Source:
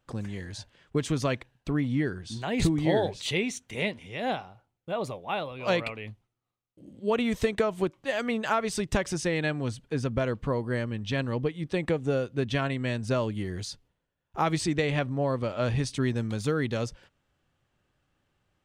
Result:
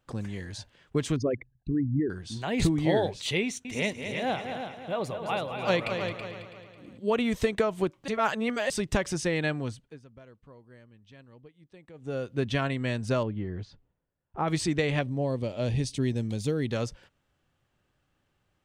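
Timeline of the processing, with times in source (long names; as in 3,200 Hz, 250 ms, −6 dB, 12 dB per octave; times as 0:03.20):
0:01.16–0:02.10: spectral envelope exaggerated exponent 3
0:03.43–0:06.98: echo machine with several playback heads 109 ms, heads second and third, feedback 41%, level −8 dB
0:08.08–0:08.70: reverse
0:09.54–0:12.38: duck −23.5 dB, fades 0.45 s
0:13.23–0:14.48: head-to-tape spacing loss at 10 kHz 37 dB
0:15.01–0:16.70: parametric band 1,300 Hz −13.5 dB 1 octave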